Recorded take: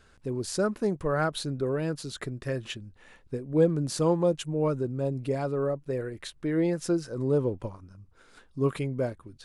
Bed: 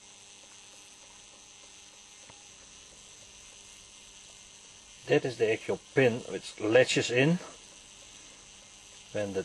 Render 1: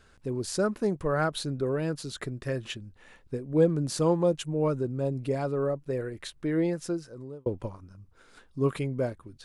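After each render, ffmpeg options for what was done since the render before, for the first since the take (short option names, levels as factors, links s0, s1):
-filter_complex "[0:a]asplit=2[s0][s1];[s0]atrim=end=7.46,asetpts=PTS-STARTPTS,afade=t=out:st=6.54:d=0.92[s2];[s1]atrim=start=7.46,asetpts=PTS-STARTPTS,afade=t=in:d=0.004:c=hsin[s3];[s2][s3]concat=n=2:v=0:a=1"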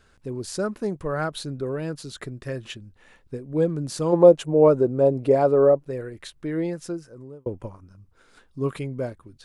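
-filter_complex "[0:a]asplit=3[s0][s1][s2];[s0]afade=t=out:st=4.12:d=0.02[s3];[s1]equalizer=f=570:w=0.56:g=13.5,afade=t=in:st=4.12:d=0.02,afade=t=out:st=5.85:d=0.02[s4];[s2]afade=t=in:st=5.85:d=0.02[s5];[s3][s4][s5]amix=inputs=3:normalize=0,asettb=1/sr,asplit=3[s6][s7][s8];[s6]atrim=end=6.924[s9];[s7]atrim=start=6.92:end=7.87,asetpts=PTS-STARTPTS,afade=t=in:d=0.004:c=qsin,afade=t=out:st=0.946:d=0.004:c=qsin,equalizer=f=4000:t=o:w=0.56:g=-8[s10];[s8]atrim=start=7.866[s11];[s9][s10]acrossfade=d=0.004:c1=hsin:c2=qsin[s12];[s12][s11]acrossfade=d=0.004:c1=qsin:c2=hsin"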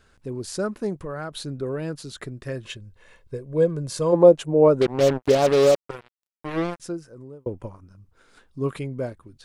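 -filter_complex "[0:a]asettb=1/sr,asplit=3[s0][s1][s2];[s0]atrim=end=0.954[s3];[s1]atrim=start=0.95:end=1.46,asetpts=PTS-STARTPTS,afade=t=in:d=0.004:c=qsin,afade=t=out:st=0.506:d=0.004:c=qsin,acompressor=threshold=0.0355:ratio=3:attack=3.2:release=140:knee=1:detection=peak[s4];[s2]atrim=start=1.456[s5];[s3][s4]acrossfade=d=0.004:c1=hsin:c2=qsin[s6];[s6][s5]acrossfade=d=0.004:c1=qsin:c2=hsin,asettb=1/sr,asplit=3[s7][s8][s9];[s7]atrim=end=2.644[s10];[s8]atrim=start=2.64:end=4.15,asetpts=PTS-STARTPTS,afade=t=in:d=0.004:c=qsin,afade=t=out:st=1.506:d=0.004:c=qsin,aecho=1:1:1.9:0.53,atrim=end_sample=66591[s11];[s9]atrim=start=4.146[s12];[s10][s11]acrossfade=d=0.004:c1=hsin:c2=qsin[s13];[s13][s12]acrossfade=d=0.004:c1=qsin:c2=hsin,asettb=1/sr,asplit=3[s14][s15][s16];[s14]atrim=end=4.814[s17];[s15]atrim=start=4.81:end=6.8,asetpts=PTS-STARTPTS,afade=t=in:d=0.004:c=qsin,afade=t=out:st=1.986:d=0.004:c=qsin,acrusher=bits=3:mix=0:aa=0.5[s18];[s16]atrim=start=6.796[s19];[s17][s18]acrossfade=d=0.004:c1=hsin:c2=qsin[s20];[s20][s19]acrossfade=d=0.004:c1=qsin:c2=hsin"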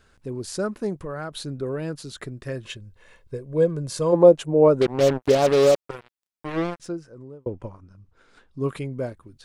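-filter_complex "[0:a]asettb=1/sr,asplit=3[s0][s1][s2];[s0]atrim=end=6.514[s3];[s1]atrim=start=6.51:end=8.6,asetpts=PTS-STARTPTS,afade=t=in:d=0.004:c=qsin,afade=t=out:st=2.086:d=0.004:c=qsin,adynamicsmooth=sensitivity=8:basefreq=7700[s4];[s2]atrim=start=8.596[s5];[s3][s4]acrossfade=d=0.004:c1=hsin:c2=qsin[s6];[s6][s5]acrossfade=d=0.004:c1=qsin:c2=hsin"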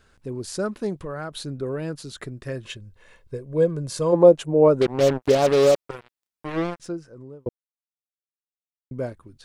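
-filter_complex "[0:a]asettb=1/sr,asplit=3[s0][s1][s2];[s0]atrim=end=0.654[s3];[s1]atrim=start=0.65:end=1.09,asetpts=PTS-STARTPTS,afade=t=in:d=0.004:c=qsin,afade=t=out:st=0.436:d=0.004:c=qsin,equalizer=f=3500:w=1.5:g=5.5[s4];[s2]atrim=start=1.086[s5];[s3][s4]acrossfade=d=0.004:c1=hsin:c2=qsin[s6];[s6][s5]acrossfade=d=0.004:c1=qsin:c2=hsin,asplit=3[s7][s8][s9];[s7]atrim=end=7.49,asetpts=PTS-STARTPTS,afade=t=out:st=7.486:d=0.004:c=hsin[s10];[s8]atrim=start=7.49:end=8.91,asetpts=PTS-STARTPTS,volume=0[s11];[s9]atrim=start=8.91,asetpts=PTS-STARTPTS,afade=t=in:d=0.004:c=hsin[s12];[s10][s11][s12]concat=n=3:v=0:a=1"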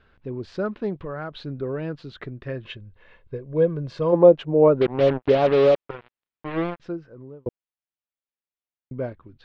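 -af "lowpass=f=3500:w=0.5412,lowpass=f=3500:w=1.3066"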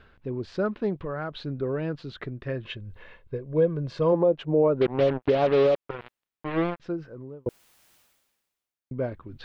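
-af "areverse,acompressor=mode=upward:threshold=0.02:ratio=2.5,areverse,alimiter=limit=0.224:level=0:latency=1:release=222"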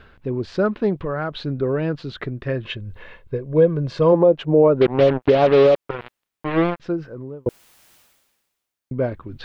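-af "volume=2.24"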